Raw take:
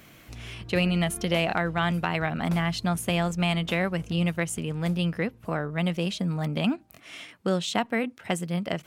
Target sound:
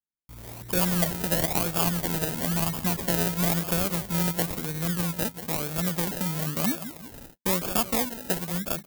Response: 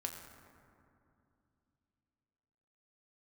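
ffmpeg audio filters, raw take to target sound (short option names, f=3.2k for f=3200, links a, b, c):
-af "aecho=1:1:180|360|540|720|900:0.251|0.113|0.0509|0.0229|0.0103,anlmdn=0.0251,agate=range=-43dB:threshold=-49dB:ratio=16:detection=peak,acrusher=samples=31:mix=1:aa=0.000001:lfo=1:lforange=18.6:lforate=1,aemphasis=mode=production:type=50fm,volume=-2.5dB"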